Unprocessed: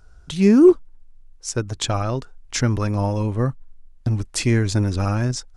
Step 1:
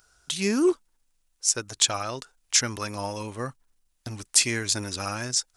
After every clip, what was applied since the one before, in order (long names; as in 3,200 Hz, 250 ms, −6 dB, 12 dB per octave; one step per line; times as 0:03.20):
spectral tilt +4 dB per octave
level −4 dB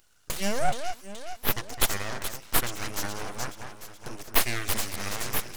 delay that swaps between a low-pass and a high-pass 212 ms, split 1,900 Hz, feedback 72%, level −7 dB
full-wave rectification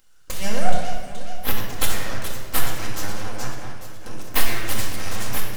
rectangular room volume 1,400 cubic metres, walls mixed, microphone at 2.1 metres
level −1 dB